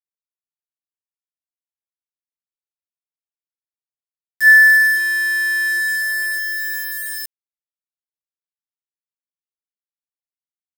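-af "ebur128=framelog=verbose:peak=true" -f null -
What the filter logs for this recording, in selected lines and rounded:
Integrated loudness:
  I:         -13.8 LUFS
  Threshold: -24.3 LUFS
Loudness range:
  LRA:        14.7 LU
  Threshold: -36.9 LUFS
  LRA low:   -28.8 LUFS
  LRA high:  -14.0 LUFS
True peak:
  Peak:       -3.3 dBFS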